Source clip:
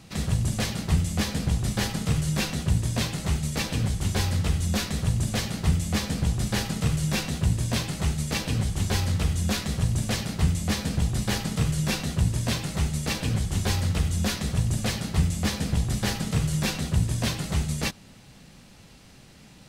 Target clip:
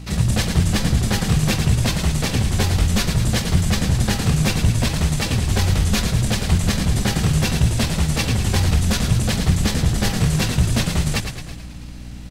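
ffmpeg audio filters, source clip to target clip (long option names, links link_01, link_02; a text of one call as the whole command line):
ffmpeg -i in.wav -filter_complex "[0:a]asplit=2[link_01][link_02];[link_02]aecho=0:1:571|1142:0.0891|0.0178[link_03];[link_01][link_03]amix=inputs=2:normalize=0,atempo=1.6,acontrast=79,aeval=exprs='val(0)+0.02*(sin(2*PI*60*n/s)+sin(2*PI*2*60*n/s)/2+sin(2*PI*3*60*n/s)/3+sin(2*PI*4*60*n/s)/4+sin(2*PI*5*60*n/s)/5)':channel_layout=same,asplit=2[link_04][link_05];[link_05]asplit=7[link_06][link_07][link_08][link_09][link_10][link_11][link_12];[link_06]adelay=108,afreqshift=-44,volume=-7.5dB[link_13];[link_07]adelay=216,afreqshift=-88,volume=-12.7dB[link_14];[link_08]adelay=324,afreqshift=-132,volume=-17.9dB[link_15];[link_09]adelay=432,afreqshift=-176,volume=-23.1dB[link_16];[link_10]adelay=540,afreqshift=-220,volume=-28.3dB[link_17];[link_11]adelay=648,afreqshift=-264,volume=-33.5dB[link_18];[link_12]adelay=756,afreqshift=-308,volume=-38.7dB[link_19];[link_13][link_14][link_15][link_16][link_17][link_18][link_19]amix=inputs=7:normalize=0[link_20];[link_04][link_20]amix=inputs=2:normalize=0" out.wav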